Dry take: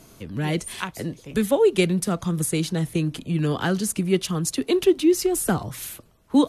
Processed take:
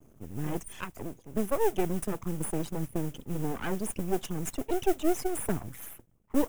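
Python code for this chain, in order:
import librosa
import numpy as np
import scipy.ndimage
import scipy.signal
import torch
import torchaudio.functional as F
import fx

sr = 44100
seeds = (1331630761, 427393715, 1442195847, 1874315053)

y = fx.envelope_sharpen(x, sr, power=2.0)
y = np.maximum(y, 0.0)
y = fx.mod_noise(y, sr, seeds[0], snr_db=18)
y = fx.peak_eq(y, sr, hz=4300.0, db=-11.0, octaves=0.56)
y = F.gain(torch.from_numpy(y), -4.5).numpy()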